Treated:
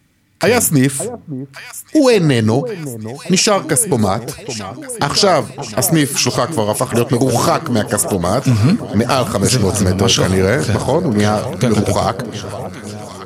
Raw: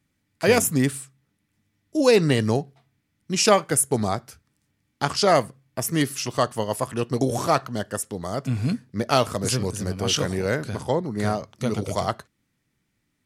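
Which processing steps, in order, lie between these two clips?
compression 4:1, threshold -24 dBFS, peak gain reduction 11 dB; echo whose repeats swap between lows and highs 564 ms, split 990 Hz, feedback 80%, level -13.5 dB; loudness maximiser +16.5 dB; trim -1 dB

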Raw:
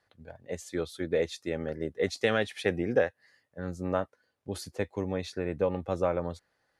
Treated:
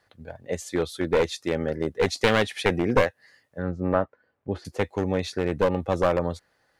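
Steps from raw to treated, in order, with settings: one-sided wavefolder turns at -23 dBFS; 3.62–4.65 s: low-pass 1.9 kHz 12 dB/octave; trim +7 dB

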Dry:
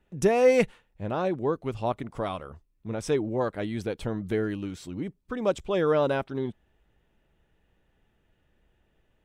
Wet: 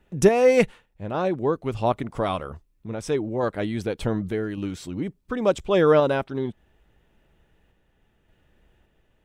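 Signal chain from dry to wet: random-step tremolo; trim +7 dB

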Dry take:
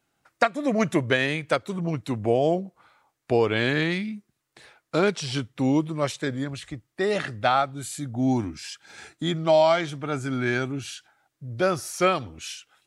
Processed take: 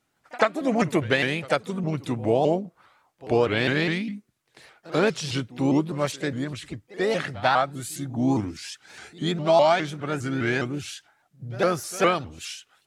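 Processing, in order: harmony voices +4 st -12 dB; pre-echo 89 ms -20 dB; vibrato with a chosen wave saw up 4.9 Hz, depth 160 cents

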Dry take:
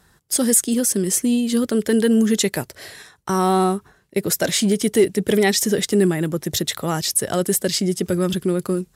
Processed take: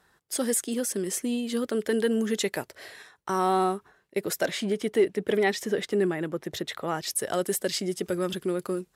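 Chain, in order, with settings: tone controls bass -11 dB, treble -7 dB, from 4.45 s treble -15 dB, from 7.06 s treble -5 dB; trim -4.5 dB

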